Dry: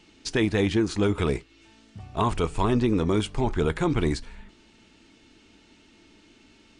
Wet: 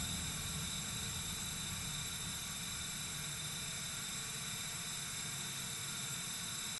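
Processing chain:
every frequency bin delayed by itself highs early, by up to 224 ms
high-pass filter 61 Hz 12 dB per octave
high-shelf EQ 3,500 Hz +7 dB
bad sample-rate conversion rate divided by 6×, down filtered, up zero stuff
output level in coarse steps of 13 dB
pitch shifter −11.5 semitones
on a send at −8 dB: convolution reverb RT60 2.2 s, pre-delay 20 ms
on the sum: extreme stretch with random phases 6.7×, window 1.00 s, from 0:04.85
level +10 dB

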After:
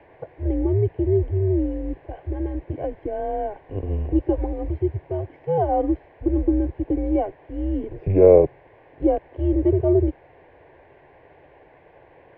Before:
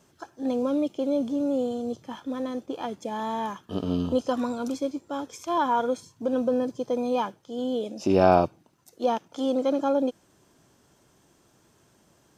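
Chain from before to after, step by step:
parametric band 1,100 Hz −9 dB 0.61 octaves
in parallel at −5.5 dB: bit-depth reduction 6 bits, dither triangular
on the sum: phaser with its sweep stopped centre 400 Hz, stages 6
single-sideband voice off tune −190 Hz 290–2,000 Hz
level +6 dB

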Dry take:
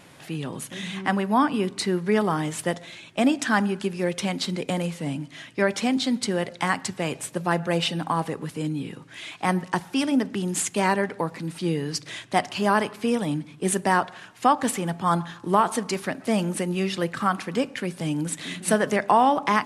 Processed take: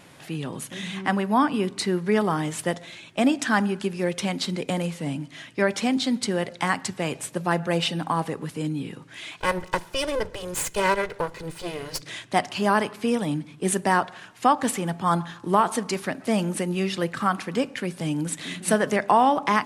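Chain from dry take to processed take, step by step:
0:09.40–0:12.02: lower of the sound and its delayed copy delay 2 ms

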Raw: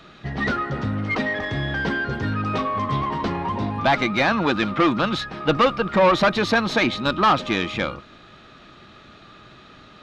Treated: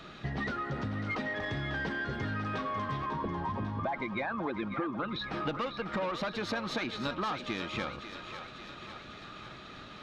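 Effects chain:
0:03.06–0:05.24: spectral envelope exaggerated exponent 2
downward compressor 12 to 1, threshold −30 dBFS, peak gain reduction 17.5 dB
feedback echo with a high-pass in the loop 546 ms, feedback 65%, high-pass 420 Hz, level −9 dB
level −1.5 dB

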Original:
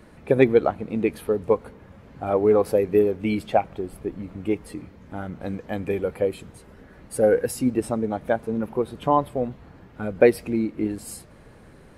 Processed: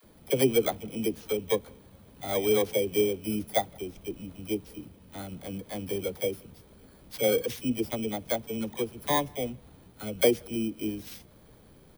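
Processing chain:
samples in bit-reversed order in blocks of 16 samples
all-pass dispersion lows, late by 41 ms, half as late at 440 Hz
far-end echo of a speakerphone 170 ms, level −30 dB
level −6.5 dB

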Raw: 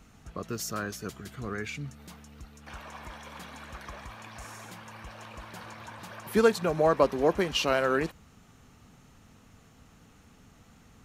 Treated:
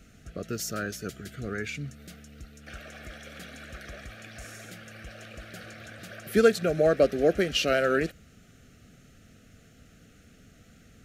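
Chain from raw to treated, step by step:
Chebyshev band-stop filter 660–1,400 Hz, order 2
level +2.5 dB

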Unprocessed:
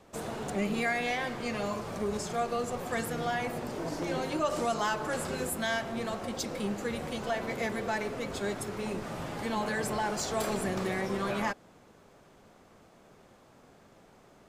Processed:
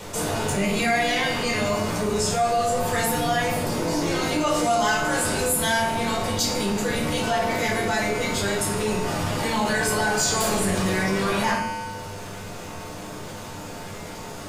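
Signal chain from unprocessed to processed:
high-shelf EQ 2,800 Hz +10 dB
tuned comb filter 100 Hz, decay 1.2 s, harmonics odd, mix 80%
rectangular room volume 490 cubic metres, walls furnished, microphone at 4.7 metres
envelope flattener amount 50%
level +8 dB

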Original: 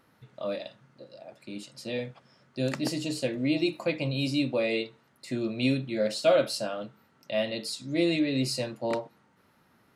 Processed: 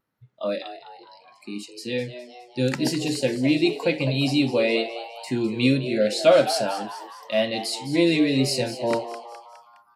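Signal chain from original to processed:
noise reduction from a noise print of the clip's start 22 dB
tape wow and flutter 25 cents
echo with shifted repeats 207 ms, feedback 51%, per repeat +120 Hz, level −12.5 dB
level +6 dB

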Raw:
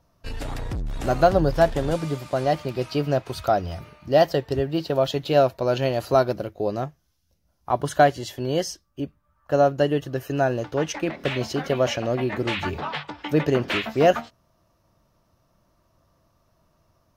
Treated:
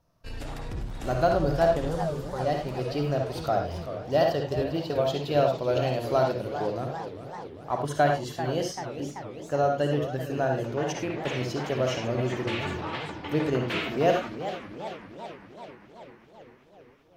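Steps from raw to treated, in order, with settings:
0:01.88–0:02.40: phaser with its sweep stopped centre 440 Hz, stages 8
convolution reverb, pre-delay 48 ms, DRR 3 dB
feedback echo with a swinging delay time 391 ms, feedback 67%, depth 208 cents, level −11 dB
level −6.5 dB

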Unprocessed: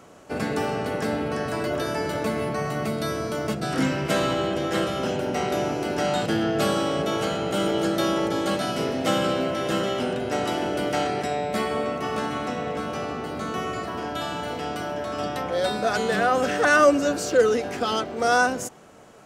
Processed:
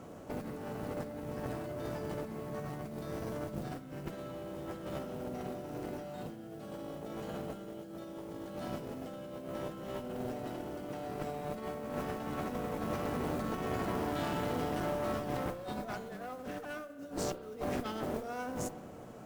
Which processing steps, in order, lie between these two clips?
brickwall limiter −15 dBFS, peak gain reduction 8 dB
tilt shelving filter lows +6.5 dB, about 840 Hz
notch filter 410 Hz, Q 12
compressor whose output falls as the input rises −28 dBFS, ratio −0.5
noise that follows the level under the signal 22 dB
asymmetric clip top −33.5 dBFS
convolution reverb RT60 1.5 s, pre-delay 32 ms, DRR 11 dB
level −8 dB

